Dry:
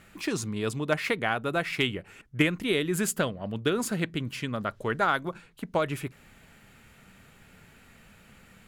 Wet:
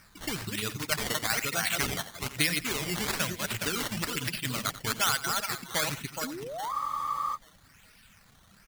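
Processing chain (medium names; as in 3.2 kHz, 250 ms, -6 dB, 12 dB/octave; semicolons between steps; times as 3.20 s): backward echo that repeats 208 ms, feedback 66%, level -3.5 dB; bass shelf 75 Hz +3 dB; in parallel at +1 dB: level held to a coarse grid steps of 15 dB; on the sum: reverb removal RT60 1.3 s; decimation with a swept rate 12×, swing 100% 1.1 Hz; painted sound rise, 6.23–7.26 s, 230–6400 Hz -25 dBFS; amplifier tone stack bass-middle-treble 5-5-5; on a send: delay 90 ms -15.5 dB; on the sum: spectral freeze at 6.73 s, 0.63 s; trim +6.5 dB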